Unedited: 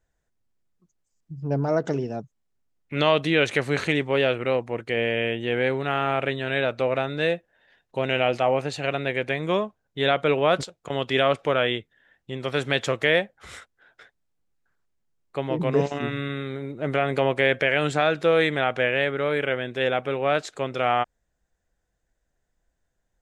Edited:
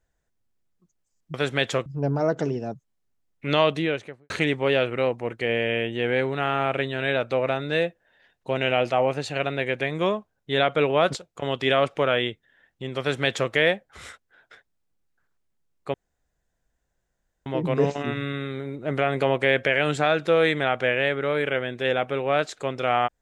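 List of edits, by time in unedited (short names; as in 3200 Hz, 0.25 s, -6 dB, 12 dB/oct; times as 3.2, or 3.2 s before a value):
3.09–3.78 studio fade out
12.48–13 copy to 1.34
15.42 insert room tone 1.52 s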